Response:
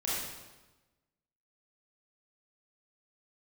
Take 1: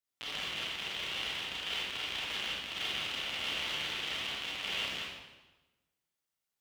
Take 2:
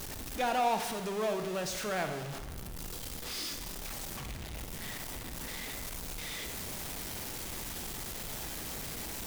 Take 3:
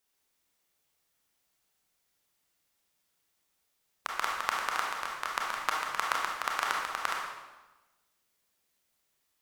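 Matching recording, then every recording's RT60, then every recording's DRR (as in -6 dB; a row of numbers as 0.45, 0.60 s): 1; 1.1, 1.1, 1.1 s; -8.0, 6.5, -2.0 dB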